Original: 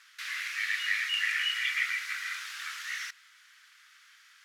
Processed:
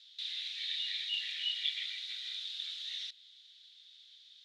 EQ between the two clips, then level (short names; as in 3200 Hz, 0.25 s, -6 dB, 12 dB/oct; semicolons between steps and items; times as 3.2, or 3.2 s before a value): bell 3500 Hz +9 dB 0.8 oct; dynamic EQ 5200 Hz, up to -3 dB, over -46 dBFS, Q 1; ladder band-pass 4000 Hz, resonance 75%; +1.5 dB